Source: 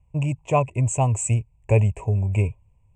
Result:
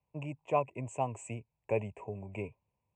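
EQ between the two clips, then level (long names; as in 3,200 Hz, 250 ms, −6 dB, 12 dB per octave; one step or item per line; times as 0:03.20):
high-pass filter 50 Hz
three-way crossover with the lows and the highs turned down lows −20 dB, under 190 Hz, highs −14 dB, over 3,100 Hz
−8.5 dB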